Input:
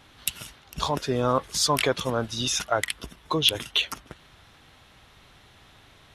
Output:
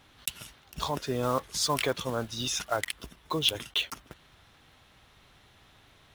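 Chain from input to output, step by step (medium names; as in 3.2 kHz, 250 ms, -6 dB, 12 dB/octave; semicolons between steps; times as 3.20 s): block-companded coder 5-bit; trim -5 dB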